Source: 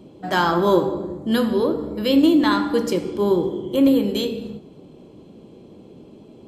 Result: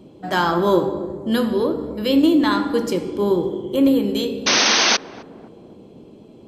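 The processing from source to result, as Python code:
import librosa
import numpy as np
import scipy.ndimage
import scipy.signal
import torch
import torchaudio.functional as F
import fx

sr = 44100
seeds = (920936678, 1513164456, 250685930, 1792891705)

y = fx.spec_paint(x, sr, seeds[0], shape='noise', start_s=4.46, length_s=0.51, low_hz=200.0, high_hz=6400.0, level_db=-16.0)
y = fx.echo_banded(y, sr, ms=260, feedback_pct=65, hz=380.0, wet_db=-15)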